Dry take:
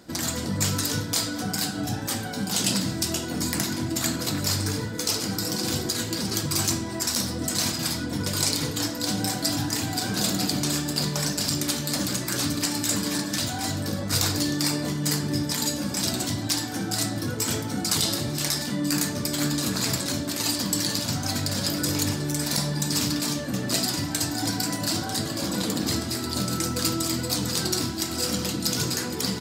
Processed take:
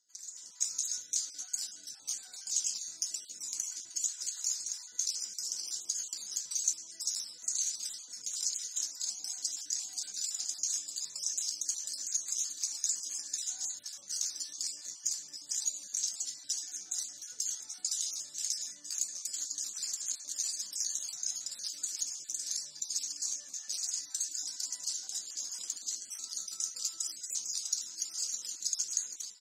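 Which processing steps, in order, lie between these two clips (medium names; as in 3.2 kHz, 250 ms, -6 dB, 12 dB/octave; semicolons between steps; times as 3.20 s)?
random holes in the spectrogram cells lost 30%; compression 2.5:1, threshold -29 dBFS, peak gain reduction 6.5 dB; band-pass filter 6.5 kHz, Q 6.9; level rider gain up to 14 dB; trim -7 dB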